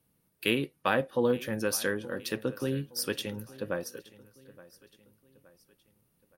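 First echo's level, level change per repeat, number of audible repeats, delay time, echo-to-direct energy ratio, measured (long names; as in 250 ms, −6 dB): −20.0 dB, −7.0 dB, 3, 870 ms, −19.0 dB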